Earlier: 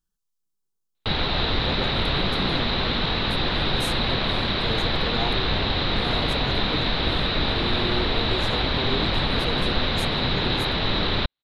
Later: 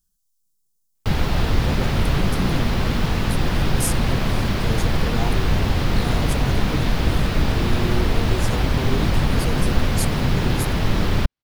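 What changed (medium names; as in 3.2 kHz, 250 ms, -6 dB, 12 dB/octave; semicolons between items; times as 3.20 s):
background: remove resonant low-pass 3.9 kHz, resonance Q 11; master: add tone controls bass +8 dB, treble +14 dB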